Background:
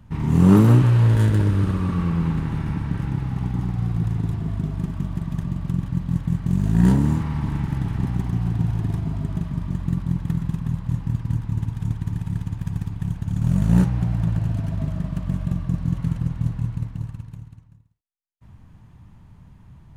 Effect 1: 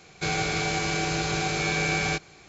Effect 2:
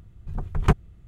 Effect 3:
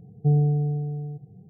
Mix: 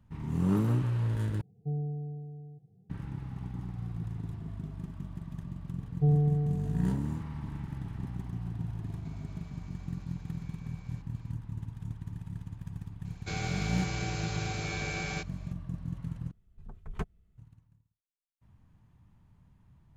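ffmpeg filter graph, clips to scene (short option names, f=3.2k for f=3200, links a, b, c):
-filter_complex "[3:a]asplit=2[a][b];[1:a]asplit=2[c][d];[0:a]volume=-14dB[e];[c]acompressor=threshold=-37dB:ratio=12:attack=0.16:release=286:knee=1:detection=peak[f];[2:a]aecho=1:1:4.6:0.38[g];[e]asplit=3[h][i][j];[h]atrim=end=1.414[k];[a]atrim=end=1.49,asetpts=PTS-STARTPTS,volume=-13.5dB[l];[i]atrim=start=2.896:end=16.314[m];[g]atrim=end=1.07,asetpts=PTS-STARTPTS,volume=-17dB[n];[j]atrim=start=17.376[o];[b]atrim=end=1.49,asetpts=PTS-STARTPTS,volume=-4.5dB,afade=t=in:d=0.004:c=hsin,afade=t=out:st=1.486:d=0.004:c=hsin,adelay=254457S[p];[f]atrim=end=2.48,asetpts=PTS-STARTPTS,volume=-17.5dB,afade=t=in:d=0.004:c=hsin,afade=t=out:st=2.476:d=0.004:c=hsin,adelay=8840[q];[d]atrim=end=2.48,asetpts=PTS-STARTPTS,volume=-10.5dB,afade=t=in:d=0.004:c=hsin,afade=t=out:st=2.476:d=0.004:c=hsin,adelay=13050[r];[k][l]acrossfade=d=0.004:c1=hsin:c2=hsin[s];[s][m]acrossfade=d=0.004:c1=hsin:c2=hsin[t];[t][n]acrossfade=d=0.004:c1=hsin:c2=hsin[u];[u][o]acrossfade=d=0.004:c1=hsin:c2=hsin[v];[v][p][q][r]amix=inputs=4:normalize=0"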